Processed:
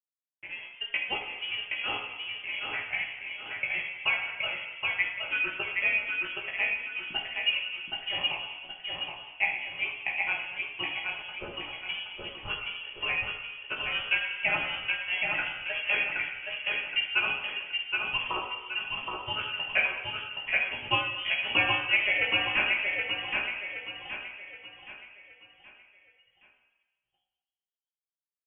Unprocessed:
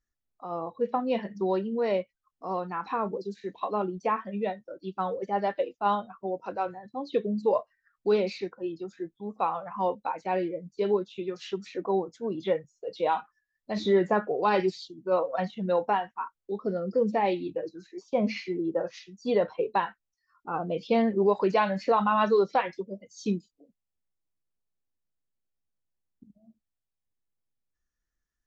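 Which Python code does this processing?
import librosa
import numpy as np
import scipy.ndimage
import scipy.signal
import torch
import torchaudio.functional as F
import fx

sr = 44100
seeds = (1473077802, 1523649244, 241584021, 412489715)

y = np.diff(x, prepend=0.0)
y = fx.hum_notches(y, sr, base_hz=60, count=8)
y = fx.transient(y, sr, attack_db=9, sustain_db=-3)
y = np.sign(y) * np.maximum(np.abs(y) - 10.0 ** (-54.0 / 20.0), 0.0)
y = fx.doubler(y, sr, ms=16.0, db=-3)
y = fx.echo_feedback(y, sr, ms=772, feedback_pct=41, wet_db=-3.5)
y = fx.room_shoebox(y, sr, seeds[0], volume_m3=1200.0, walls='mixed', distance_m=1.6)
y = fx.freq_invert(y, sr, carrier_hz=3300)
y = y * 10.0 ** (9.0 / 20.0)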